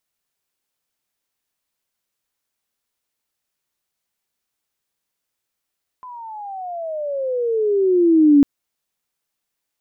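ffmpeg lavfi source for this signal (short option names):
-f lavfi -i "aevalsrc='pow(10,(-7+26*(t/2.4-1))/20)*sin(2*PI*1020*2.4/(-22.5*log(2)/12)*(exp(-22.5*log(2)/12*t/2.4)-1))':d=2.4:s=44100"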